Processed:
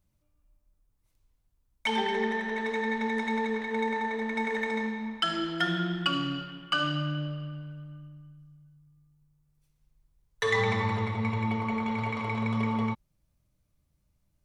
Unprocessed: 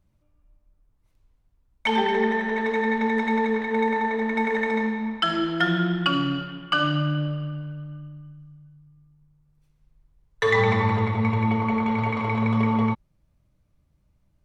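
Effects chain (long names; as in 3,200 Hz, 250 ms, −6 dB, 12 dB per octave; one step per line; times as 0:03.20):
high-shelf EQ 4,100 Hz +11.5 dB
level −7 dB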